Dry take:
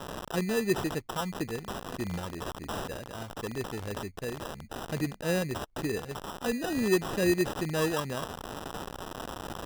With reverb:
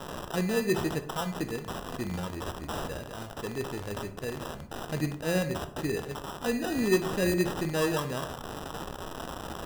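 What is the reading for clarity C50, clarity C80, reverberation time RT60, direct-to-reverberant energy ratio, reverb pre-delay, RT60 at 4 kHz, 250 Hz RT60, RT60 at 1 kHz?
11.5 dB, 15.5 dB, 0.60 s, 8.0 dB, 13 ms, 0.30 s, 0.75 s, 0.50 s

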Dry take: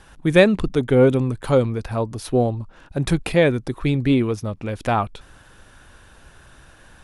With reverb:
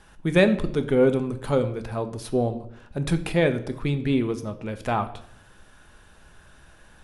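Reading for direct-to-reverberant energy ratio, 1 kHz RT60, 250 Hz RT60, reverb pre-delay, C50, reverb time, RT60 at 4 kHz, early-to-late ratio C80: 8.0 dB, 0.60 s, 0.75 s, 5 ms, 13.5 dB, 0.70 s, 0.55 s, 16.5 dB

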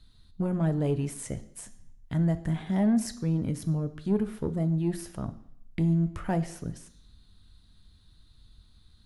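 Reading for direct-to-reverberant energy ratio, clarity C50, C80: 10.5 dB, 15.0 dB, 18.0 dB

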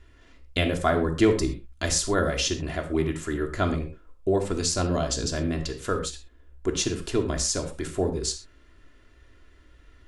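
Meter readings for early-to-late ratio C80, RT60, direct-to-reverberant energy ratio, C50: 14.0 dB, non-exponential decay, 2.0 dB, 9.5 dB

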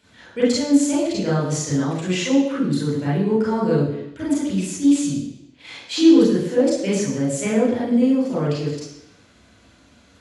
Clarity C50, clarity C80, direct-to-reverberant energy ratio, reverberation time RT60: 0.5 dB, 5.0 dB, −7.5 dB, 0.85 s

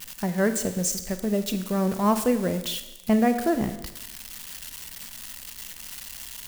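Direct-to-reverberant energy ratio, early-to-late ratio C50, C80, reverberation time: 9.0 dB, 11.0 dB, 12.5 dB, 1.0 s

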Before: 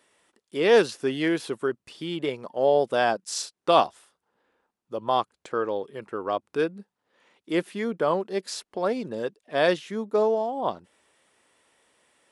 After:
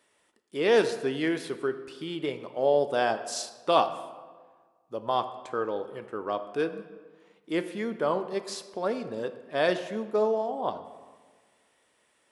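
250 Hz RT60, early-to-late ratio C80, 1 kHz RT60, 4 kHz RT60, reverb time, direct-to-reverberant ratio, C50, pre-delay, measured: 1.6 s, 13.0 dB, 1.5 s, 0.95 s, 1.5 s, 9.0 dB, 11.5 dB, 3 ms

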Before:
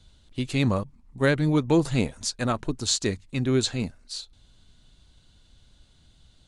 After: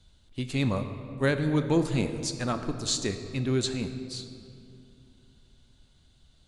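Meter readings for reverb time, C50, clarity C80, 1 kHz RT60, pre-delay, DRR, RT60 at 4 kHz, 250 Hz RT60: 2.7 s, 9.0 dB, 10.0 dB, 2.5 s, 15 ms, 8.0 dB, 1.5 s, 3.4 s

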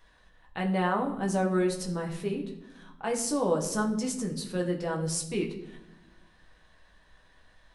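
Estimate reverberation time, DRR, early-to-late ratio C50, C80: 0.95 s, 0.0 dB, 9.5 dB, 12.0 dB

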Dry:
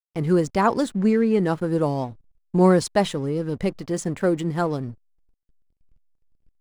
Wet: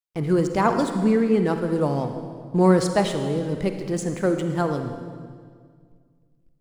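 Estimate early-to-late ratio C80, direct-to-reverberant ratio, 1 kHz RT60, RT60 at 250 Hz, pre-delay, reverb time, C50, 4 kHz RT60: 8.0 dB, 6.5 dB, 1.8 s, 2.4 s, 39 ms, 2.0 s, 6.5 dB, 1.6 s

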